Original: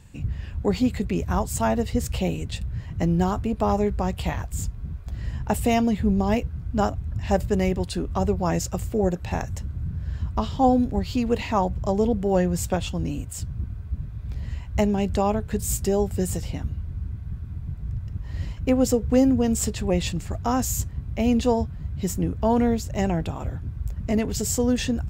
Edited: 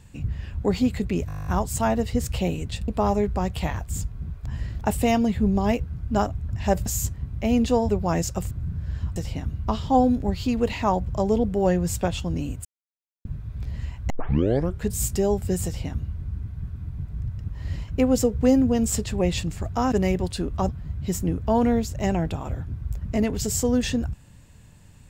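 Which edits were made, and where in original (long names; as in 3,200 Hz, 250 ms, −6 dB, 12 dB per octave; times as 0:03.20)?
0:01.27: stutter 0.02 s, 11 plays
0:02.68–0:03.51: remove
0:05.09–0:05.44: reverse
0:07.49–0:08.26: swap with 0:20.61–0:21.64
0:08.88–0:09.70: remove
0:13.34–0:13.94: silence
0:14.79: tape start 0.71 s
0:16.34–0:16.84: duplicate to 0:10.35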